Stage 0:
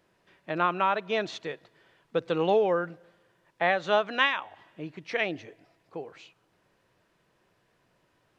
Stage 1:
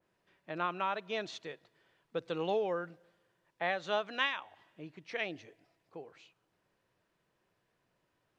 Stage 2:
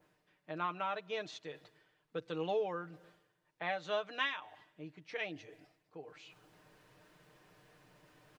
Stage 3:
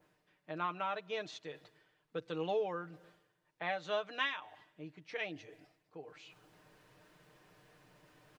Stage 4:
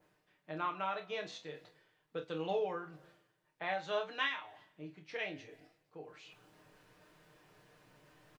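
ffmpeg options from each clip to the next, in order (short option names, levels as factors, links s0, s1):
-af "adynamicequalizer=threshold=0.0112:dfrequency=2900:dqfactor=0.7:tfrequency=2900:tqfactor=0.7:attack=5:release=100:ratio=0.375:range=2.5:mode=boostabove:tftype=highshelf,volume=0.355"
-af "areverse,acompressor=mode=upward:threshold=0.00562:ratio=2.5,areverse,aecho=1:1:6.6:0.56,volume=0.596"
-af anull
-filter_complex "[0:a]asplit=2[s0][s1];[s1]aecho=0:1:26|48:0.447|0.224[s2];[s0][s2]amix=inputs=2:normalize=0,flanger=delay=9.2:depth=6.3:regen=85:speed=0.45:shape=triangular,volume=1.5"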